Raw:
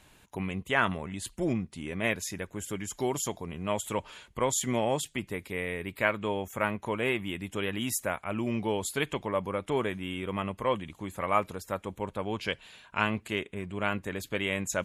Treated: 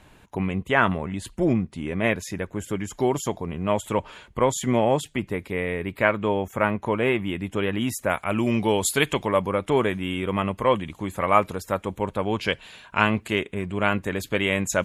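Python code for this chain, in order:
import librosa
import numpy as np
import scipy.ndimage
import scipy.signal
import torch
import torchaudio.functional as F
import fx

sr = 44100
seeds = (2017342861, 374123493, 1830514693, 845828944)

y = fx.high_shelf(x, sr, hz=2800.0, db=fx.steps((0.0, -10.5), (8.09, 3.0), (9.41, -3.0)))
y = F.gain(torch.from_numpy(y), 8.0).numpy()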